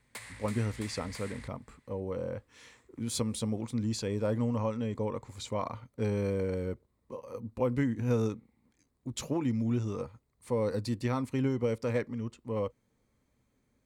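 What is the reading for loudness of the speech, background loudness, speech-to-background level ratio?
-33.5 LUFS, -47.0 LUFS, 13.5 dB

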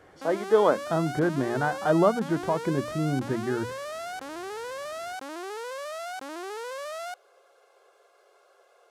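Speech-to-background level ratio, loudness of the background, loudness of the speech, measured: 10.5 dB, -36.5 LUFS, -26.0 LUFS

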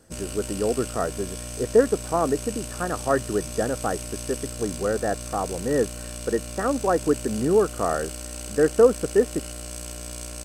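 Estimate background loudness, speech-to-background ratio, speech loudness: -34.5 LUFS, 9.5 dB, -25.0 LUFS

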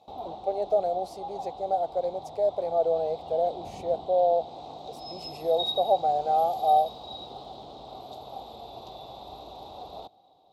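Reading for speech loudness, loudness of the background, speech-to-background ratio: -27.0 LUFS, -39.5 LUFS, 12.5 dB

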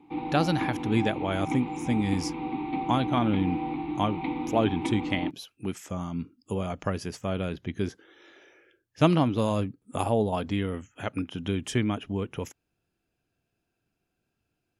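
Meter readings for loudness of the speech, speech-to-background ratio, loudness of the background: -29.5 LUFS, 3.0 dB, -32.5 LUFS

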